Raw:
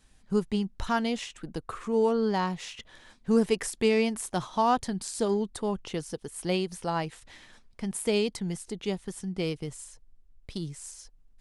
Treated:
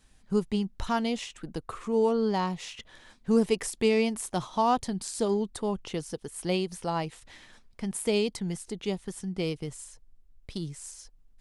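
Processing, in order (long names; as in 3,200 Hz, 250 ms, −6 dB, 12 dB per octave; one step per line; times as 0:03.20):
dynamic equaliser 1,600 Hz, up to −5 dB, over −50 dBFS, Q 3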